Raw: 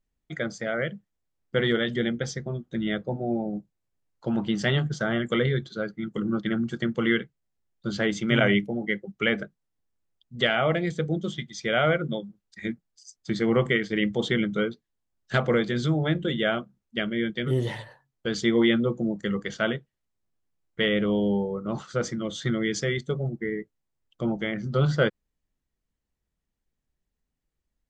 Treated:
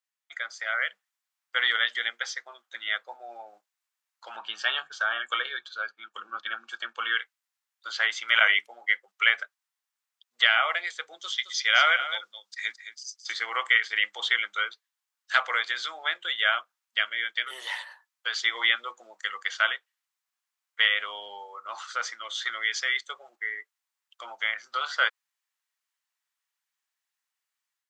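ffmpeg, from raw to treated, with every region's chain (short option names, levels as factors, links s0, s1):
-filter_complex "[0:a]asettb=1/sr,asplit=3[s0][s1][s2];[s0]atrim=end=4.354[s3];[s1]atrim=start=4.35:end=7.17,asetpts=PTS-STARTPTS,afade=t=in:d=0.004:c=qsin,afade=t=out:st=2.816:d=0.004:c=qsin,asuperstop=centerf=2000:order=8:qfactor=6.2,bass=f=250:g=9,treble=f=4000:g=-8[s4];[s2]atrim=start=7.166[s5];[s3][s4]acrossfade=d=0.004:c1=hsin:c2=qsin[s6];[s6][s5]acrossfade=d=0.004:c1=qsin:c2=hsin,asettb=1/sr,asplit=3[s7][s8][s9];[s7]atrim=end=11.194[s10];[s8]atrim=start=11.19:end=13.34,asetpts=PTS-STARTPTS,afade=t=in:d=0.004:c=qsin,afade=t=out:st=2.146:d=0.004:c=qsin,equalizer=f=5500:w=1:g=9.5,aecho=1:1:216:0.251,atrim=end_sample=94815[s11];[s9]atrim=start=13.336[s12];[s10][s11]acrossfade=d=0.004:c1=hsin:c2=qsin[s13];[s13][s12]acrossfade=d=0.004:c1=qsin:c2=hsin,acrossover=split=5400[s14][s15];[s15]acompressor=threshold=0.002:ratio=4:attack=1:release=60[s16];[s14][s16]amix=inputs=2:normalize=0,highpass=f=1000:w=0.5412,highpass=f=1000:w=1.3066,dynaudnorm=f=380:g=3:m=2"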